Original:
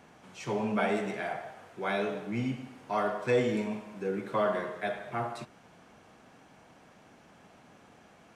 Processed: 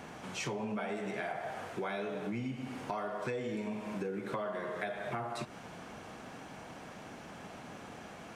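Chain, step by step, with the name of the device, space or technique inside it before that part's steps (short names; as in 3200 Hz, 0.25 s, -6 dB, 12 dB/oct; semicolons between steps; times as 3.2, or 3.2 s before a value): serial compression, peaks first (compressor 4:1, threshold -40 dBFS, peak gain reduction 15.5 dB; compressor 2.5:1, threshold -45 dBFS, peak gain reduction 7 dB); gain +9 dB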